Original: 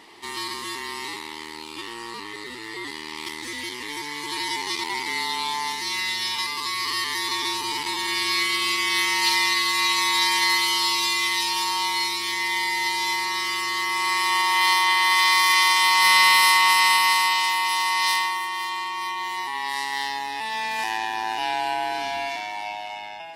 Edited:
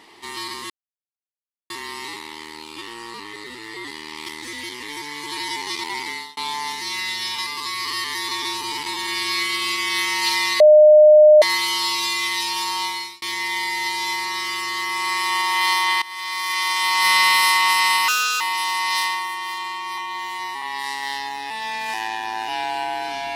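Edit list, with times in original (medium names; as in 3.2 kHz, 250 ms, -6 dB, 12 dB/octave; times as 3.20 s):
0.70 s: insert silence 1.00 s
5.05–5.37 s: fade out
9.60–10.42 s: bleep 608 Hz -6 dBFS
11.84–12.22 s: fade out
15.02–16.09 s: fade in, from -19.5 dB
17.08–17.52 s: speed 135%
19.09–19.52 s: stretch 1.5×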